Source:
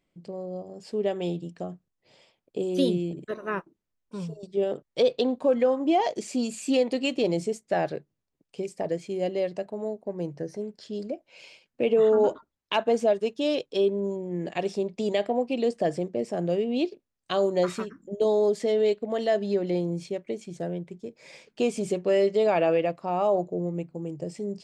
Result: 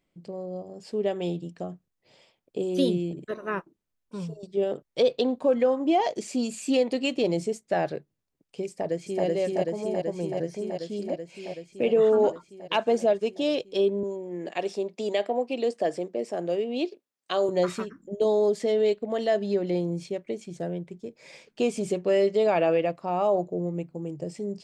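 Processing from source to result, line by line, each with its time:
0:08.68–0:09.25: delay throw 380 ms, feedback 80%, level 0 dB
0:14.03–0:17.49: high-pass filter 290 Hz

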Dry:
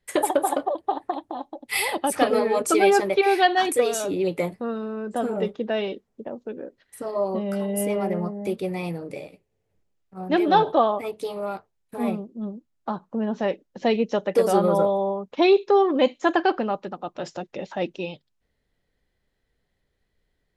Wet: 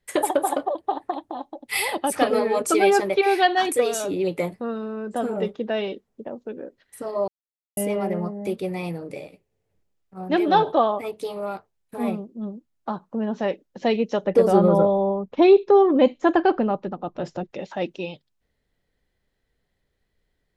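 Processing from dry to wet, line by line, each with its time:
0:07.28–0:07.77: silence
0:14.24–0:17.51: spectral tilt −2.5 dB per octave

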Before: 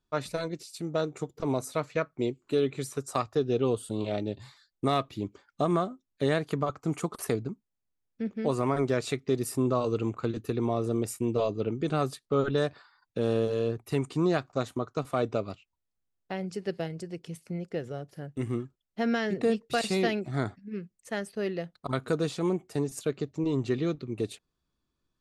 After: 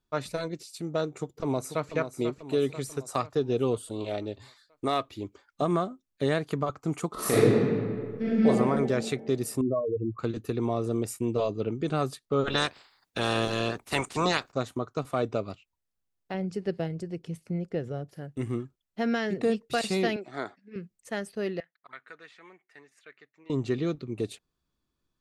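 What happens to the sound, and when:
0:01.07–0:01.93: delay throw 490 ms, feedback 55%, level −9 dB
0:03.81–0:05.62: parametric band 160 Hz −12.5 dB
0:07.12–0:08.46: thrown reverb, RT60 2 s, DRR −11 dB
0:09.61–0:10.19: expanding power law on the bin magnitudes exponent 3.6
0:12.46–0:14.51: ceiling on every frequency bin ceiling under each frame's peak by 23 dB
0:16.34–0:18.09: spectral tilt −1.5 dB per octave
0:20.16–0:20.76: band-pass filter 400–6,000 Hz
0:21.60–0:23.50: resonant band-pass 1,900 Hz, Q 4.3

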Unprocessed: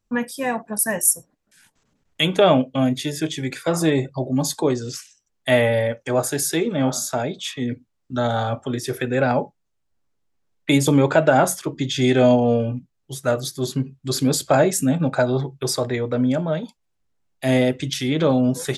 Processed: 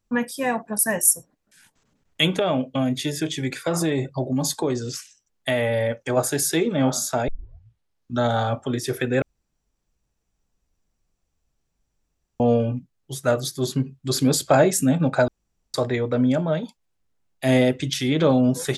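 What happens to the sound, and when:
0:02.35–0:06.17: downward compressor 5 to 1, threshold −18 dBFS
0:07.28: tape start 0.90 s
0:09.22–0:12.40: fill with room tone
0:15.28–0:15.74: fill with room tone

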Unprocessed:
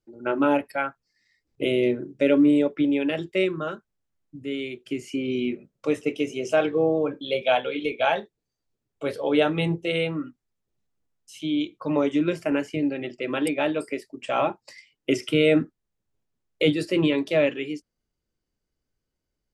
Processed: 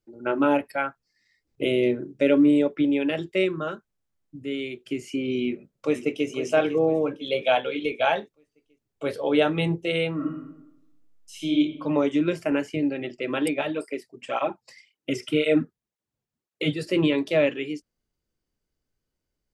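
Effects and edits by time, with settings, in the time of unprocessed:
0:05.45–0:06.28: delay throw 500 ms, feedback 45%, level −11 dB
0:10.14–0:11.57: thrown reverb, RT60 0.91 s, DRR −1.5 dB
0:13.61–0:16.87: through-zero flanger with one copy inverted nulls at 1.9 Hz, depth 3.8 ms

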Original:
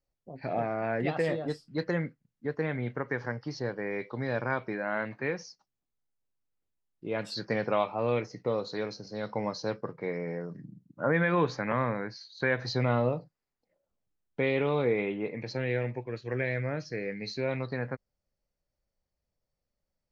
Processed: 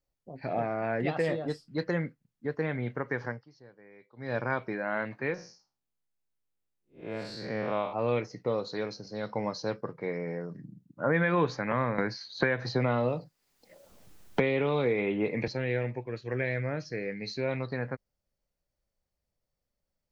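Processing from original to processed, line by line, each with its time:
0:03.27–0:04.35: duck −20.5 dB, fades 0.19 s
0:05.34–0:07.93: spectrum smeared in time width 163 ms
0:11.98–0:15.48: multiband upward and downward compressor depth 100%

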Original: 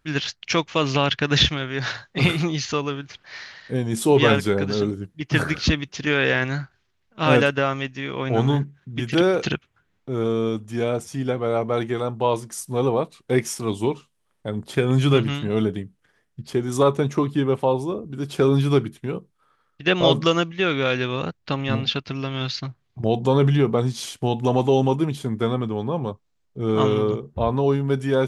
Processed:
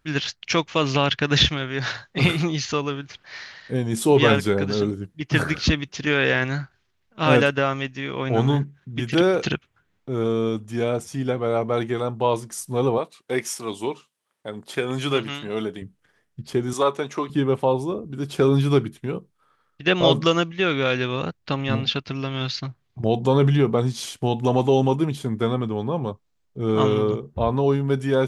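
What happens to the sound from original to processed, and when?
0:12.98–0:15.82: high-pass filter 490 Hz 6 dB per octave
0:16.73–0:17.30: meter weighting curve A

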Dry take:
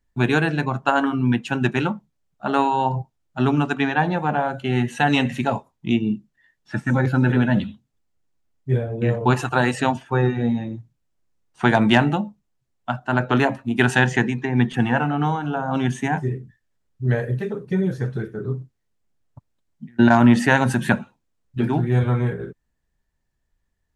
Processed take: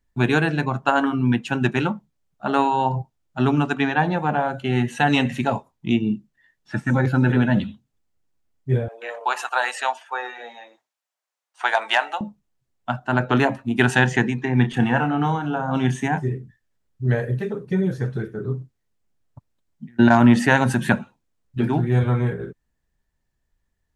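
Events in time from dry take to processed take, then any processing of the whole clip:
0:08.88–0:12.21: high-pass filter 640 Hz 24 dB per octave
0:14.40–0:16.06: double-tracking delay 31 ms −10 dB

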